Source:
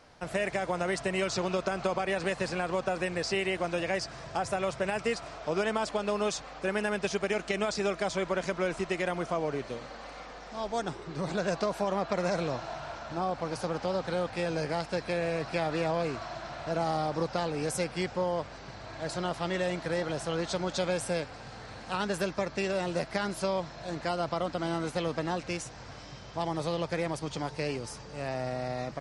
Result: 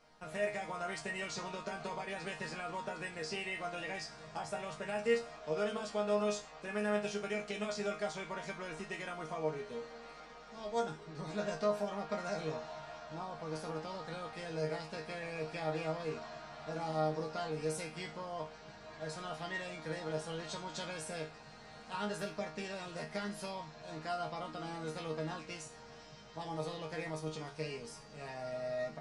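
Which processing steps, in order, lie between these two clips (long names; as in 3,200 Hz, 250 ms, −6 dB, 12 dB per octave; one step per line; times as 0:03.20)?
resonators tuned to a chord D#3 sus4, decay 0.3 s
level +7.5 dB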